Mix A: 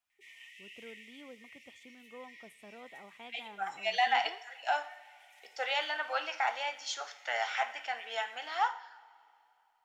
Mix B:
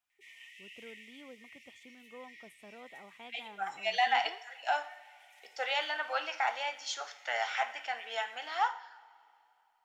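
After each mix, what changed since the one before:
first voice: send off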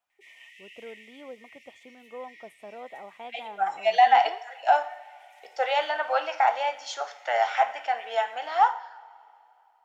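master: add peaking EQ 660 Hz +12.5 dB 1.8 oct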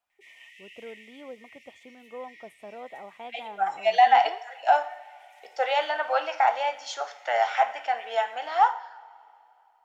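master: add bass shelf 180 Hz +4.5 dB

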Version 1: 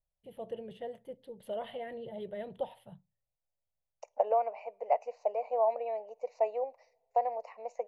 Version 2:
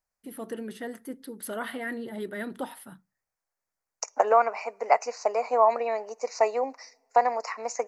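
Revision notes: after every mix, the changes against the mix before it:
first voice -5.0 dB; master: remove FFT filter 150 Hz 0 dB, 270 Hz -25 dB, 560 Hz -2 dB, 880 Hz -11 dB, 1.4 kHz -28 dB, 3.1 kHz -9 dB, 5 kHz -29 dB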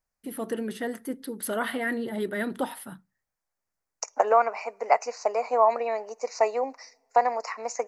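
first voice +5.0 dB

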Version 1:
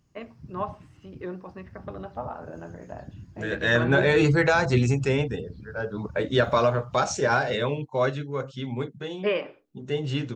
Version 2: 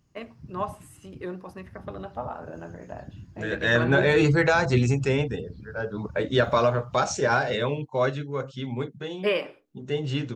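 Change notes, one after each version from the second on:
first voice: remove distance through air 190 m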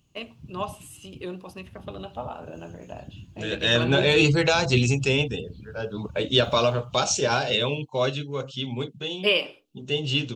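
background: add peaking EQ 5.1 kHz -11 dB 0.45 oct; master: add resonant high shelf 2.3 kHz +6.5 dB, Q 3

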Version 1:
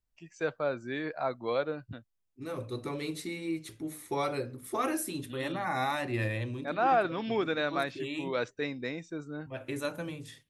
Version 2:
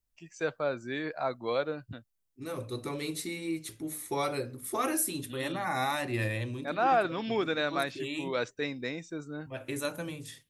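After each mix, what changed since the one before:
master: add treble shelf 5.6 kHz +9 dB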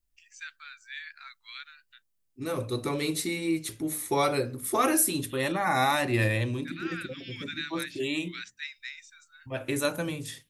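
first voice: add steep high-pass 1.6 kHz 36 dB/octave; second voice +6.0 dB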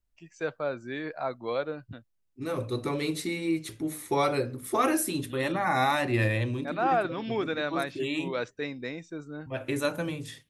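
first voice: remove steep high-pass 1.6 kHz 36 dB/octave; master: add treble shelf 5.6 kHz -9 dB

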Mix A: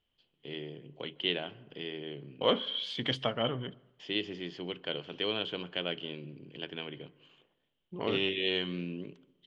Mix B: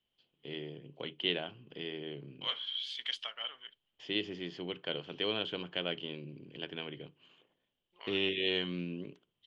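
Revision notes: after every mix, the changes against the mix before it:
second voice: add Bessel high-pass 2.3 kHz, order 2; reverb: off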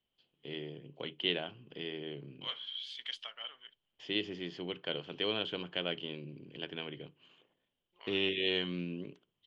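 second voice -4.0 dB

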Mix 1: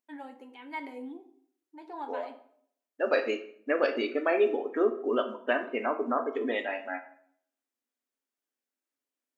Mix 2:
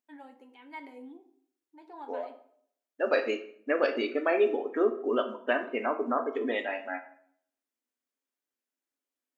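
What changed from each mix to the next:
first voice -5.5 dB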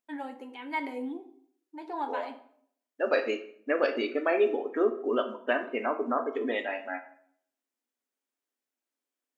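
first voice +11.0 dB

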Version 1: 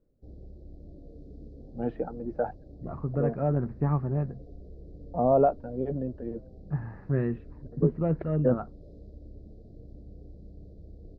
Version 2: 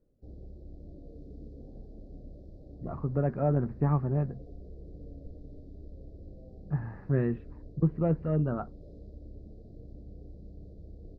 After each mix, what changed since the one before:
first voice: muted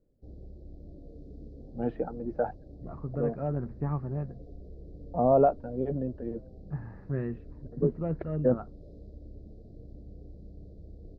first voice: unmuted; second voice -5.0 dB

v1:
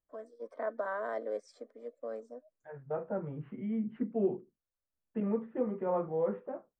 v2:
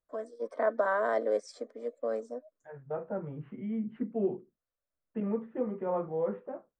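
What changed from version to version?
first voice +7.5 dB; master: add tone controls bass 0 dB, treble +4 dB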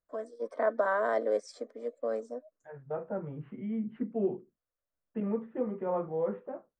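no change

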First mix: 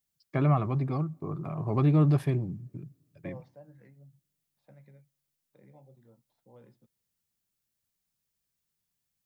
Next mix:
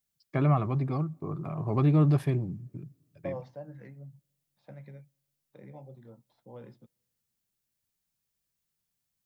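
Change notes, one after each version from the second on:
second voice +8.5 dB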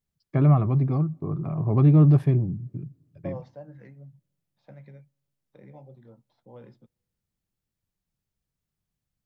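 first voice: add tilt EQ -2.5 dB/octave

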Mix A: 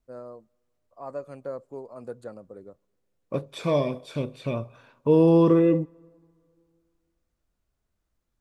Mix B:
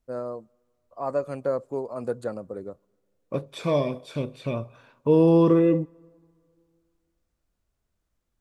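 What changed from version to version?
first voice +8.5 dB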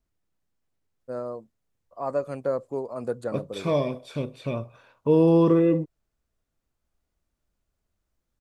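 first voice: entry +1.00 s; reverb: off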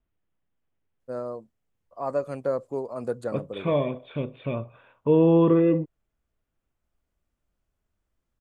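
second voice: add steep low-pass 3.5 kHz 72 dB/octave

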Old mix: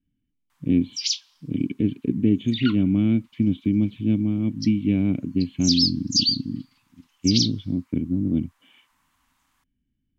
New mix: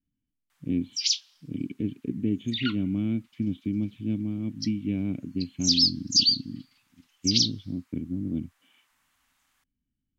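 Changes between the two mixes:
speech -7.5 dB; background: add peaking EQ 1 kHz -8.5 dB 0.51 oct

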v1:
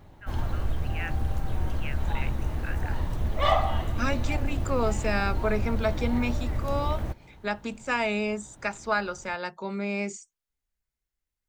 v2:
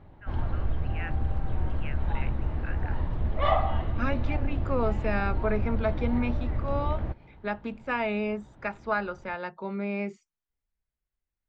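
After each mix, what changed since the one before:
master: add distance through air 340 m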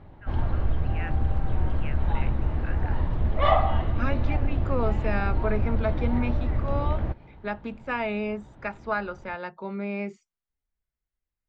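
background +3.5 dB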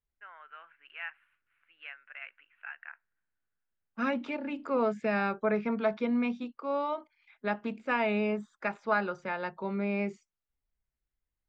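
background: muted

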